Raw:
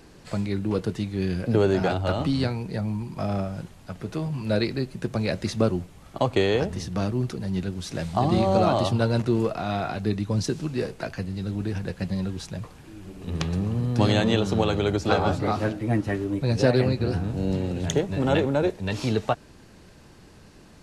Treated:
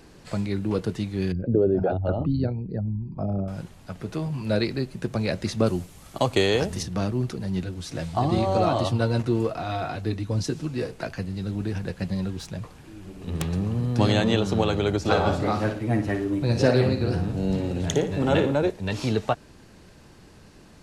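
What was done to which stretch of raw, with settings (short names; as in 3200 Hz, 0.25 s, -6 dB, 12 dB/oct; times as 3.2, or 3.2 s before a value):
1.32–3.48 formant sharpening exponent 2
5.66–6.83 high shelf 4300 Hz +11.5 dB
7.64–10.93 notch comb 200 Hz
12.3–13.44 self-modulated delay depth 0.14 ms
14.99–18.55 flutter echo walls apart 9.8 m, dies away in 0.4 s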